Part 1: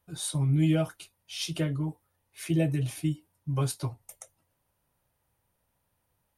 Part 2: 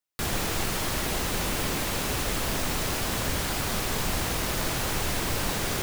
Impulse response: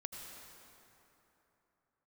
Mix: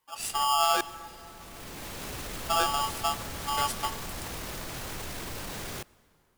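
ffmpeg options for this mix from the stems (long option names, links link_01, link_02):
-filter_complex "[0:a]aeval=exprs='val(0)*sgn(sin(2*PI*1000*n/s))':channel_layout=same,volume=-2.5dB,asplit=3[link_01][link_02][link_03];[link_01]atrim=end=0.81,asetpts=PTS-STARTPTS,afade=type=out:start_time=0.806:duration=0.004:curve=hsin[link_04];[link_02]atrim=start=0.81:end=2.49,asetpts=PTS-STARTPTS,volume=0[link_05];[link_03]atrim=start=2.49,asetpts=PTS-STARTPTS,afade=type=in:duration=0.004:curve=hsin[link_06];[link_04][link_05][link_06]concat=n=3:v=0:a=1,asplit=2[link_07][link_08];[link_08]volume=-10dB[link_09];[1:a]alimiter=level_in=1dB:limit=-24dB:level=0:latency=1:release=19,volume=-1dB,volume=-4.5dB,afade=type=in:start_time=1.35:duration=0.75:silence=0.237137,asplit=2[link_10][link_11];[link_11]volume=-17.5dB[link_12];[2:a]atrim=start_sample=2205[link_13];[link_09][link_12]amix=inputs=2:normalize=0[link_14];[link_14][link_13]afir=irnorm=-1:irlink=0[link_15];[link_07][link_10][link_15]amix=inputs=3:normalize=0"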